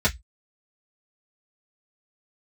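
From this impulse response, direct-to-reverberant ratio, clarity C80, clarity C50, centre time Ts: -7.5 dB, 35.5 dB, 22.5 dB, 9 ms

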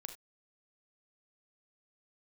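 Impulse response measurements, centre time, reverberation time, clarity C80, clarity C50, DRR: 11 ms, no single decay rate, 16.5 dB, 10.0 dB, 6.5 dB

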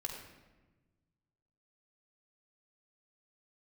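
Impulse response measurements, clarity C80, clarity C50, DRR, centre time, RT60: 5.5 dB, 4.0 dB, 0.5 dB, 44 ms, 1.2 s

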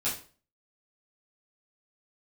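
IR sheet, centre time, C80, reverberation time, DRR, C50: 29 ms, 12.5 dB, 0.40 s, -10.5 dB, 7.5 dB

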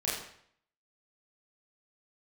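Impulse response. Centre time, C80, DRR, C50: 56 ms, 5.5 dB, -8.0 dB, 3.0 dB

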